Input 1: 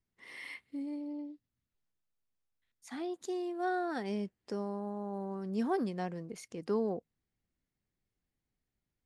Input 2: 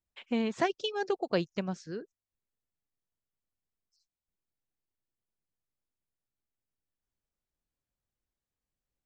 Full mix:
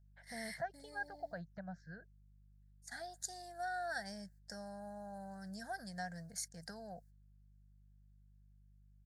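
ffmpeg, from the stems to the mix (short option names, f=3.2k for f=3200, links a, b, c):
-filter_complex "[0:a]agate=range=-17dB:threshold=-52dB:ratio=16:detection=peak,acompressor=threshold=-34dB:ratio=6,volume=-4dB[a];[1:a]lowpass=1.3k,alimiter=level_in=2.5dB:limit=-24dB:level=0:latency=1:release=134,volume=-2.5dB,volume=-6dB[b];[a][b]amix=inputs=2:normalize=0,aeval=exprs='val(0)+0.000708*(sin(2*PI*50*n/s)+sin(2*PI*2*50*n/s)/2+sin(2*PI*3*50*n/s)/3+sin(2*PI*4*50*n/s)/4+sin(2*PI*5*50*n/s)/5)':c=same,firequalizer=gain_entry='entry(170,0);entry(270,-19);entry(390,-21);entry(660,6);entry(1100,-14);entry(1600,13);entry(2600,-17);entry(4300,10);entry(7900,14)':delay=0.05:min_phase=1"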